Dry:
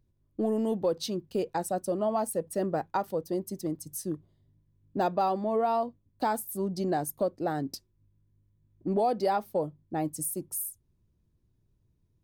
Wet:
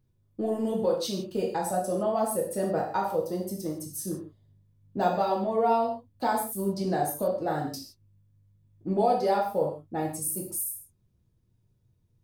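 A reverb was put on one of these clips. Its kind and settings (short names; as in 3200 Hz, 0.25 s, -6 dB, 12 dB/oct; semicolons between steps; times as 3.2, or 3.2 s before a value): non-linear reverb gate 0.19 s falling, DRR -2.5 dB; gain -2 dB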